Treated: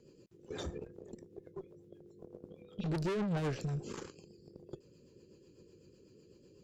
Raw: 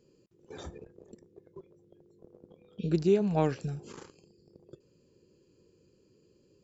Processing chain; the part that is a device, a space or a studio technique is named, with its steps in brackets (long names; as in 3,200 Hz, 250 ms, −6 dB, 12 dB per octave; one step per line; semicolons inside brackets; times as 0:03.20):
overdriven rotary cabinet (tube saturation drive 37 dB, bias 0.3; rotating-speaker cabinet horn 8 Hz)
level +6.5 dB